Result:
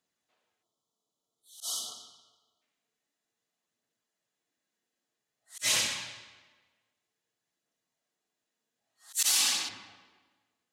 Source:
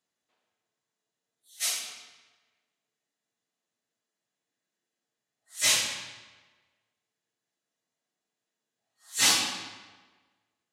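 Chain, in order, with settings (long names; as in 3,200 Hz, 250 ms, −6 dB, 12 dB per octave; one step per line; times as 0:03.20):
0:00.63–0:02.62: time-frequency box erased 1,400–2,900 Hz
phase shifter 0.52 Hz, delay 4.4 ms, feedback 23%
0:09.13–0:09.69: RIAA equalisation recording
in parallel at −6 dB: asymmetric clip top −8.5 dBFS
on the sum: volume swells 179 ms
brickwall limiter −13 dBFS, peak gain reduction 8 dB
level −3 dB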